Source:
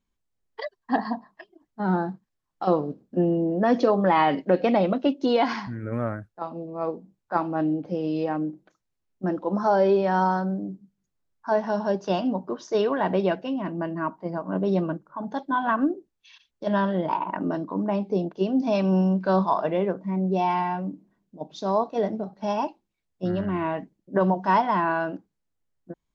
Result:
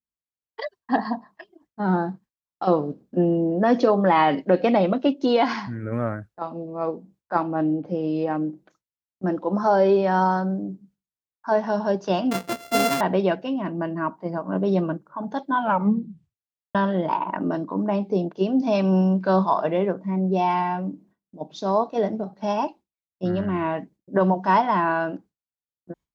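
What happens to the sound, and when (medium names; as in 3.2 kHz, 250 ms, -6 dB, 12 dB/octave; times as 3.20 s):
7.43–8.30 s: treble shelf 2.7 kHz -6.5 dB
12.31–13.01 s: sorted samples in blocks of 64 samples
15.57 s: tape stop 1.18 s
whole clip: gate with hold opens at -53 dBFS; high-pass 42 Hz; trim +2 dB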